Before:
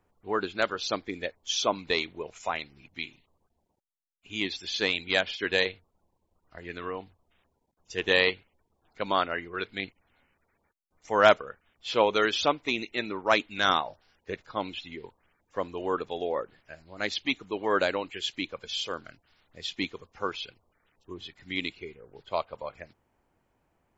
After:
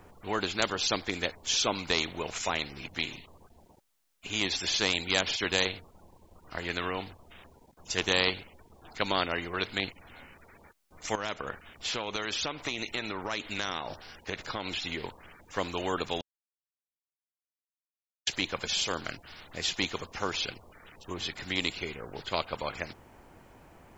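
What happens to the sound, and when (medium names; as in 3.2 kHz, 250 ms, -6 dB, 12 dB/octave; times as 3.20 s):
11.15–14.82 s: compression, threshold -37 dBFS
16.21–18.27 s: mute
whole clip: dynamic bell 1.6 kHz, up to -6 dB, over -38 dBFS, Q 0.98; spectrum-flattening compressor 2:1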